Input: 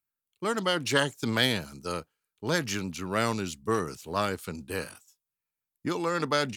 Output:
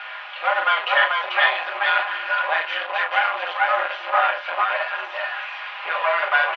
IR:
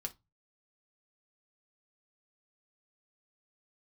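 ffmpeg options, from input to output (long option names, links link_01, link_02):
-filter_complex "[0:a]aeval=exprs='val(0)+0.5*0.0335*sgn(val(0))':channel_layout=same,aecho=1:1:4.7:0.84,asplit=2[link_01][link_02];[link_02]acompressor=threshold=-29dB:ratio=6,volume=2dB[link_03];[link_01][link_03]amix=inputs=2:normalize=0,acrusher=bits=6:dc=4:mix=0:aa=0.000001,aecho=1:1:40|437|446:0.531|0.708|0.473[link_04];[1:a]atrim=start_sample=2205[link_05];[link_04][link_05]afir=irnorm=-1:irlink=0,aeval=exprs='(tanh(4.47*val(0)+0.75)-tanh(0.75))/4.47':channel_layout=same,highpass=frequency=560:width_type=q:width=0.5412,highpass=frequency=560:width_type=q:width=1.307,lowpass=frequency=2900:width_type=q:width=0.5176,lowpass=frequency=2900:width_type=q:width=0.7071,lowpass=frequency=2900:width_type=q:width=1.932,afreqshift=140,volume=7.5dB"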